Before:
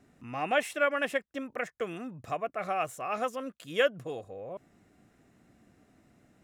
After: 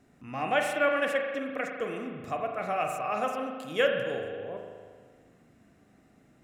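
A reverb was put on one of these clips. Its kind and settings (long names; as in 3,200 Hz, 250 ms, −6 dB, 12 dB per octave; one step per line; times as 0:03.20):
spring reverb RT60 1.7 s, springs 38 ms, chirp 55 ms, DRR 2.5 dB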